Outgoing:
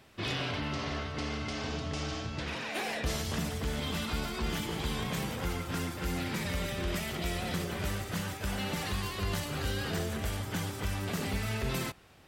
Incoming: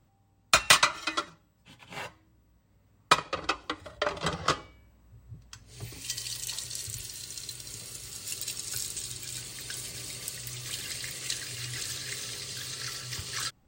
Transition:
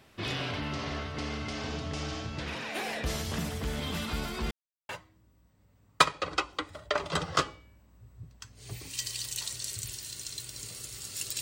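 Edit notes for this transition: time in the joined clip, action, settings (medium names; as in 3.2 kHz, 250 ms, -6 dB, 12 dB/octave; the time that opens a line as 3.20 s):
outgoing
4.51–4.89 s: mute
4.89 s: go over to incoming from 2.00 s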